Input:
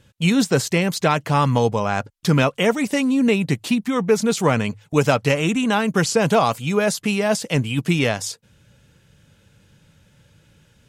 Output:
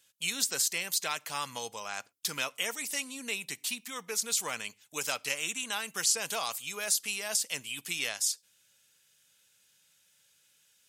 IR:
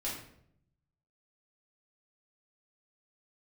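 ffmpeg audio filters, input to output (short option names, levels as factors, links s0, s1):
-filter_complex "[0:a]aderivative,asplit=2[s0][s1];[1:a]atrim=start_sample=2205,afade=t=out:st=0.17:d=0.01,atrim=end_sample=7938[s2];[s1][s2]afir=irnorm=-1:irlink=0,volume=0.0562[s3];[s0][s3]amix=inputs=2:normalize=0"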